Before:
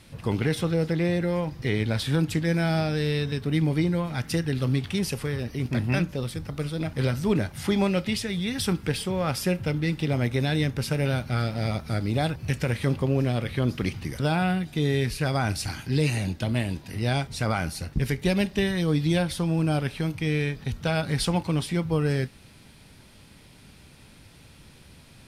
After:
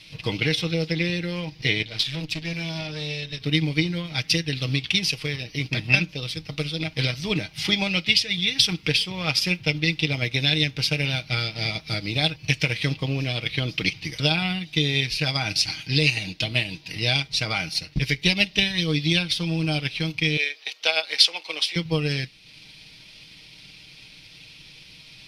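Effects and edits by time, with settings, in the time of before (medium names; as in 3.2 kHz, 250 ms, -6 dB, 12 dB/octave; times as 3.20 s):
1.82–3.40 s: valve stage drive 24 dB, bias 0.8
20.37–21.76 s: high-pass 460 Hz 24 dB/octave
whole clip: high-order bell 3.5 kHz +15.5 dB; comb 6.4 ms, depth 56%; transient shaper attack +5 dB, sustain -5 dB; trim -5 dB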